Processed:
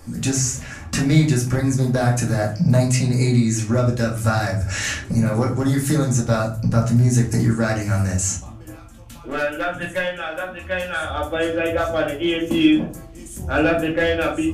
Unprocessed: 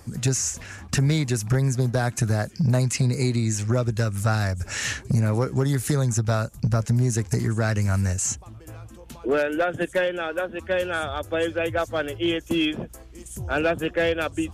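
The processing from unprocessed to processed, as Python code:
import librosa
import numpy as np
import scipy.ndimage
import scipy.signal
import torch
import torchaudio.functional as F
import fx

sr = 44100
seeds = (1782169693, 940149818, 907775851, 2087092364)

y = fx.peak_eq(x, sr, hz=360.0, db=-11.0, octaves=1.7, at=(8.74, 11.1))
y = fx.room_shoebox(y, sr, seeds[0], volume_m3=310.0, walls='furnished', distance_m=2.3)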